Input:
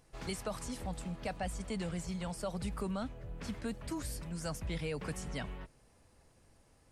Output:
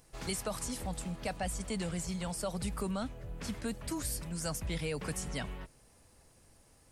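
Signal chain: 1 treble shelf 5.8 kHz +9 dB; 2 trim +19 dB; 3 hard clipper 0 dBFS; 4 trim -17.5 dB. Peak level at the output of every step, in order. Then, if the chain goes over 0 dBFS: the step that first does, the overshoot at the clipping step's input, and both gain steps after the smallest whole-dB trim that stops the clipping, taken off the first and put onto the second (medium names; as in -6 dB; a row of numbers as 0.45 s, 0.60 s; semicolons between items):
-24.0 dBFS, -5.0 dBFS, -5.0 dBFS, -22.5 dBFS; nothing clips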